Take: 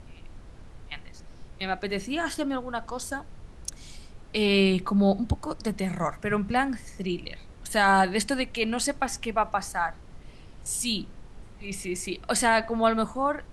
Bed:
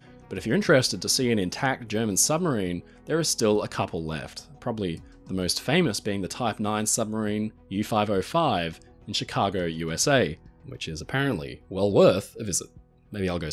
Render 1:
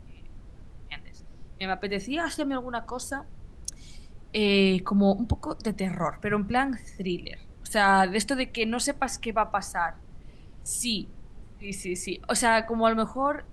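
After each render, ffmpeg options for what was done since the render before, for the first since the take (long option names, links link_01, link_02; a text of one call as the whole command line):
ffmpeg -i in.wav -af "afftdn=noise_reduction=6:noise_floor=-48" out.wav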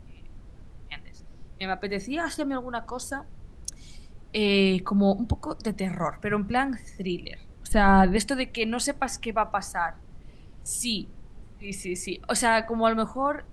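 ffmpeg -i in.wav -filter_complex "[0:a]asettb=1/sr,asplit=3[link_01][link_02][link_03];[link_01]atrim=end=1.634[link_04];[link_02]atrim=start=1.63:end=2.71,asetpts=PTS-STARTPTS,afade=type=in:duration=0.004:curve=qsin,afade=type=out:start_time=1.076:duration=0.004:curve=qsin,bandreject=frequency=2900:width=6.8[link_05];[link_03]atrim=start=2.706[link_06];[link_04][link_05]acrossfade=duration=0.004:curve1=hsin:curve2=qsin[link_07];[link_07][link_06]acrossfade=duration=0.004:curve1=qsin:curve2=hsin,asettb=1/sr,asplit=3[link_08][link_09][link_10];[link_08]atrim=end=7.724[link_11];[link_09]atrim=start=7.72:end=8.17,asetpts=PTS-STARTPTS,afade=type=in:duration=0.004:curve=qsin,afade=type=out:start_time=0.446:duration=0.004:curve=qsin,aemphasis=mode=reproduction:type=riaa[link_12];[link_10]atrim=start=8.166[link_13];[link_11][link_12]acrossfade=duration=0.004:curve1=hsin:curve2=qsin[link_14];[link_14][link_13]acrossfade=duration=0.004:curve1=qsin:curve2=hsin" out.wav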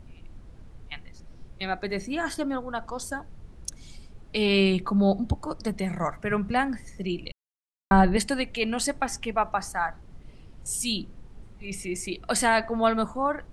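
ffmpeg -i in.wav -filter_complex "[0:a]asplit=3[link_01][link_02][link_03];[link_01]atrim=end=7.32,asetpts=PTS-STARTPTS,afade=type=out:start_time=7.316:duration=0.004:curve=hsin[link_04];[link_02]atrim=start=7.32:end=7.91,asetpts=PTS-STARTPTS,volume=0[link_05];[link_03]atrim=start=7.91,asetpts=PTS-STARTPTS,afade=type=in:duration=0.004:curve=hsin[link_06];[link_04][link_05][link_06]concat=n=3:v=0:a=1" out.wav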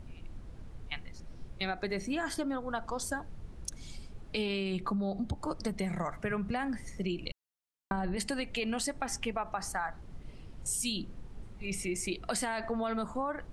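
ffmpeg -i in.wav -af "alimiter=limit=-18.5dB:level=0:latency=1,acompressor=threshold=-30dB:ratio=6" out.wav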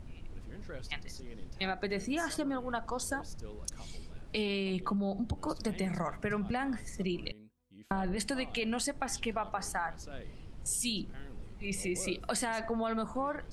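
ffmpeg -i in.wav -i bed.wav -filter_complex "[1:a]volume=-27.5dB[link_01];[0:a][link_01]amix=inputs=2:normalize=0" out.wav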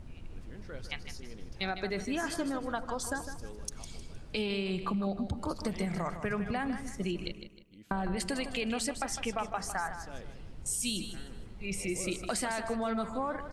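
ffmpeg -i in.wav -af "aecho=1:1:155|310|465|620:0.316|0.108|0.0366|0.0124" out.wav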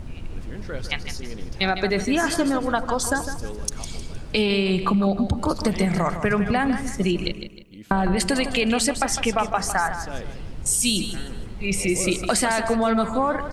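ffmpeg -i in.wav -af "volume=12dB" out.wav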